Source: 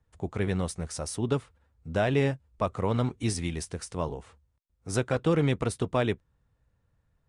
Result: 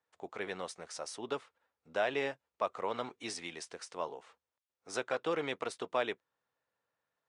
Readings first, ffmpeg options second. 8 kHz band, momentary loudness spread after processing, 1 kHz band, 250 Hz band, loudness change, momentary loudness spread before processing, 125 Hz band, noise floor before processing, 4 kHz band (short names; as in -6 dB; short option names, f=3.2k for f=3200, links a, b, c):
-8.5 dB, 10 LU, -3.5 dB, -15.0 dB, -8.5 dB, 11 LU, -27.0 dB, -73 dBFS, -3.5 dB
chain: -af "highpass=530,lowpass=6.2k,volume=-3dB"